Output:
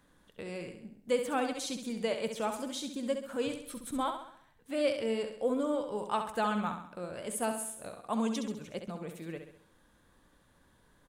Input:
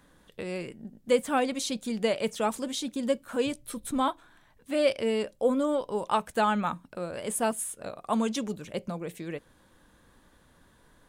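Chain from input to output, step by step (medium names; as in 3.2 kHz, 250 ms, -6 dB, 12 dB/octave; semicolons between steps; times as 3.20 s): feedback delay 67 ms, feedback 48%, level -7.5 dB; trim -6 dB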